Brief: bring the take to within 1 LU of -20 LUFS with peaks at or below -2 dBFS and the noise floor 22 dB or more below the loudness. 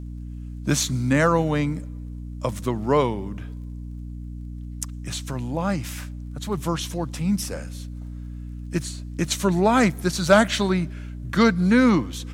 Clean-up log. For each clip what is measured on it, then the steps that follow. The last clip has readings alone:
tick rate 21 per s; hum 60 Hz; highest harmonic 300 Hz; hum level -32 dBFS; loudness -23.0 LUFS; peak level -4.0 dBFS; loudness target -20.0 LUFS
-> de-click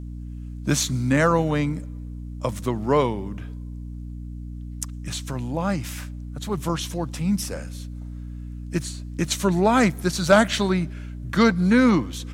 tick rate 0 per s; hum 60 Hz; highest harmonic 300 Hz; hum level -32 dBFS
-> hum notches 60/120/180/240/300 Hz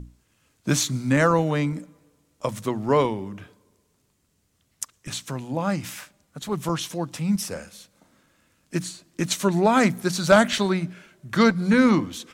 hum not found; loudness -23.0 LUFS; peak level -3.0 dBFS; loudness target -20.0 LUFS
-> trim +3 dB; peak limiter -2 dBFS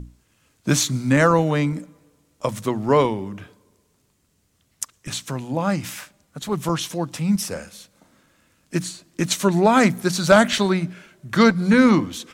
loudness -20.5 LUFS; peak level -2.0 dBFS; noise floor -66 dBFS

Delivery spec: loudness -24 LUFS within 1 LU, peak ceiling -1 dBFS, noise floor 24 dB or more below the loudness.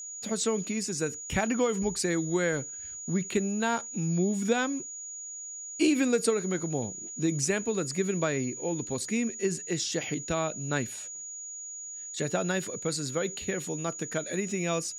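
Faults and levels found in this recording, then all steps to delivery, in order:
tick rate 16 per s; steady tone 6.8 kHz; tone level -38 dBFS; loudness -30.0 LUFS; peak level -12.5 dBFS; loudness target -24.0 LUFS
-> de-click; band-stop 6.8 kHz, Q 30; trim +6 dB

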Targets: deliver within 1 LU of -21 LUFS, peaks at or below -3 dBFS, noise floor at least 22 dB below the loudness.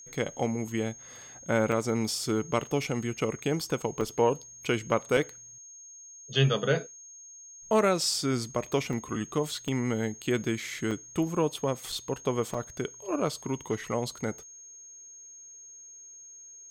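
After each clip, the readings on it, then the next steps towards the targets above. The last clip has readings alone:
dropouts 8; longest dropout 4.1 ms; steady tone 6.5 kHz; tone level -46 dBFS; loudness -30.0 LUFS; peak level -9.5 dBFS; loudness target -21.0 LUFS
-> interpolate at 1.72/4.01/5.17/8.93/9.68/10.91/11.92/12.54 s, 4.1 ms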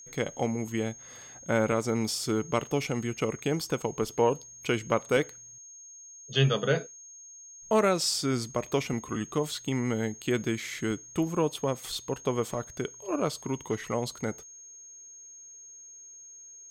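dropouts 0; steady tone 6.5 kHz; tone level -46 dBFS
-> band-stop 6.5 kHz, Q 30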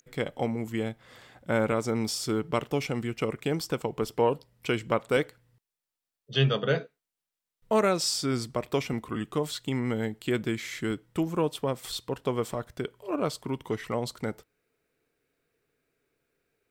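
steady tone not found; loudness -30.0 LUFS; peak level -10.0 dBFS; loudness target -21.0 LUFS
-> trim +9 dB; peak limiter -3 dBFS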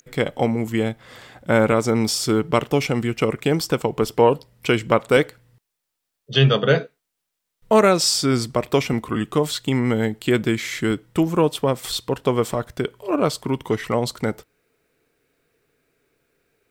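loudness -21.0 LUFS; peak level -3.0 dBFS; noise floor -80 dBFS

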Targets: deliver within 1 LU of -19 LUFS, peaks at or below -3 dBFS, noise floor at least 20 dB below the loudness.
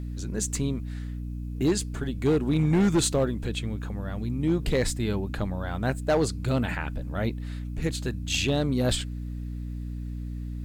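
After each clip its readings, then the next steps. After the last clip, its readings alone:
clipped samples 1.0%; clipping level -17.0 dBFS; hum 60 Hz; highest harmonic 300 Hz; hum level -32 dBFS; loudness -28.0 LUFS; peak level -17.0 dBFS; loudness target -19.0 LUFS
-> clip repair -17 dBFS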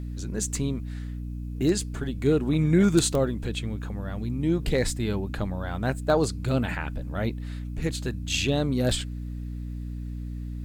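clipped samples 0.0%; hum 60 Hz; highest harmonic 300 Hz; hum level -31 dBFS
-> de-hum 60 Hz, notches 5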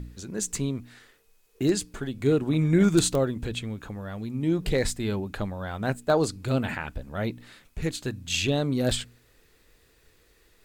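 hum not found; loudness -27.5 LUFS; peak level -7.5 dBFS; loudness target -19.0 LUFS
-> trim +8.5 dB; peak limiter -3 dBFS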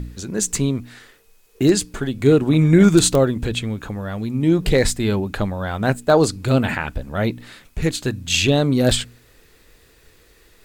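loudness -19.0 LUFS; peak level -3.0 dBFS; noise floor -54 dBFS

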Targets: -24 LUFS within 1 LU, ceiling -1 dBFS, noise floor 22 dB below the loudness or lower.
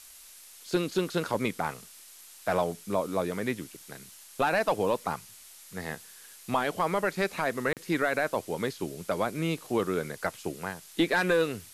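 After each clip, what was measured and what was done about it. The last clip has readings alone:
dropouts 1; longest dropout 38 ms; noise floor -51 dBFS; noise floor target -52 dBFS; loudness -30.0 LUFS; peak level -16.0 dBFS; loudness target -24.0 LUFS
-> interpolate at 7.73 s, 38 ms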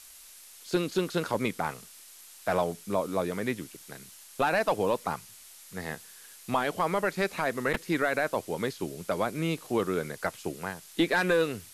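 dropouts 0; noise floor -51 dBFS; noise floor target -52 dBFS
-> noise reduction 6 dB, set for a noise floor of -51 dBFS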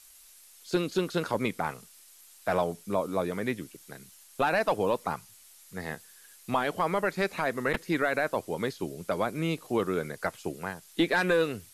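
noise floor -55 dBFS; loudness -30.0 LUFS; peak level -16.0 dBFS; loudness target -24.0 LUFS
-> trim +6 dB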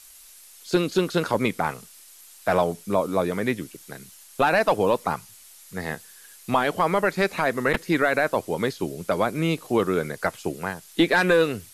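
loudness -24.0 LUFS; peak level -10.0 dBFS; noise floor -49 dBFS

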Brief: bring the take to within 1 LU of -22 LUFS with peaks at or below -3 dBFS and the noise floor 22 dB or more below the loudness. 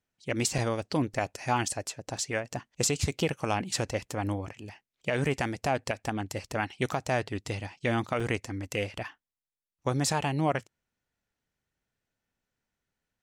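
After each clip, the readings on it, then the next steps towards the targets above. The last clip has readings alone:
dropouts 3; longest dropout 4.2 ms; loudness -31.0 LUFS; peak level -15.0 dBFS; loudness target -22.0 LUFS
-> interpolate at 0.58/1.14/8.20 s, 4.2 ms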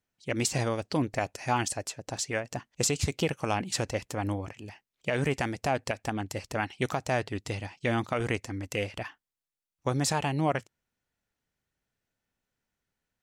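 dropouts 0; loudness -31.0 LUFS; peak level -15.0 dBFS; loudness target -22.0 LUFS
-> trim +9 dB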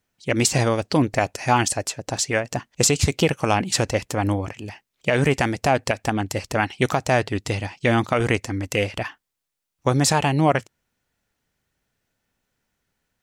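loudness -22.0 LUFS; peak level -6.0 dBFS; noise floor -81 dBFS

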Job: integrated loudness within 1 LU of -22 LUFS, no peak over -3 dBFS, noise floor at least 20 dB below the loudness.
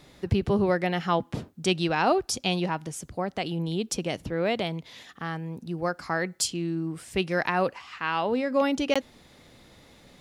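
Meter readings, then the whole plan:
dropouts 1; longest dropout 16 ms; loudness -28.0 LUFS; peak level -9.5 dBFS; loudness target -22.0 LUFS
-> interpolate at 8.94 s, 16 ms; trim +6 dB

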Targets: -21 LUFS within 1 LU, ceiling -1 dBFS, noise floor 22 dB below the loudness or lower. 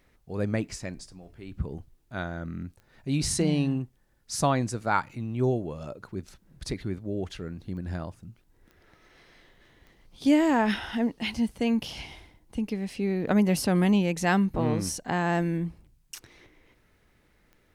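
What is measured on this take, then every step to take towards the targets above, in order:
clicks found 5; loudness -28.0 LUFS; peak level -10.0 dBFS; loudness target -21.0 LUFS
-> de-click; trim +7 dB

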